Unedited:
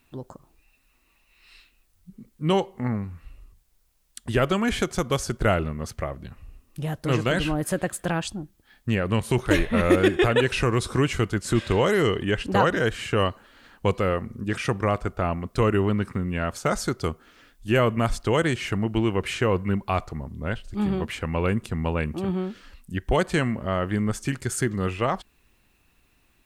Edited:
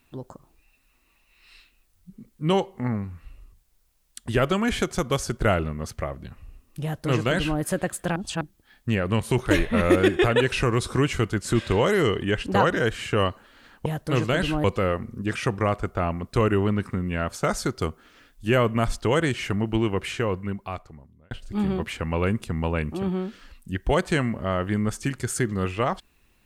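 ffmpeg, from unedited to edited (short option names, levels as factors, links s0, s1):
-filter_complex "[0:a]asplit=6[s0][s1][s2][s3][s4][s5];[s0]atrim=end=8.162[s6];[s1]atrim=start=8.158:end=8.412,asetpts=PTS-STARTPTS,areverse[s7];[s2]atrim=start=8.408:end=13.862[s8];[s3]atrim=start=6.828:end=7.612[s9];[s4]atrim=start=13.858:end=20.53,asetpts=PTS-STARTPTS,afade=t=out:st=5.152:d=1.52[s10];[s5]atrim=start=20.53,asetpts=PTS-STARTPTS,afade=t=in:d=0.004:c=hsin[s11];[s6][s7]acrossfade=d=0.004:c1=hsin:c2=hsin[s12];[s12][s8]acrossfade=d=0.004:c1=hsin:c2=hsin[s13];[s13][s9]acrossfade=d=0.004:c1=hsin:c2=hsin[s14];[s10][s11]concat=n=2:v=0:a=1[s15];[s14][s15]acrossfade=d=0.004:c1=hsin:c2=hsin"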